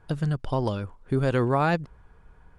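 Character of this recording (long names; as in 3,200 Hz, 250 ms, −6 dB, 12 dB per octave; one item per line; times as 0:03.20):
background noise floor −55 dBFS
spectral slope −5.5 dB per octave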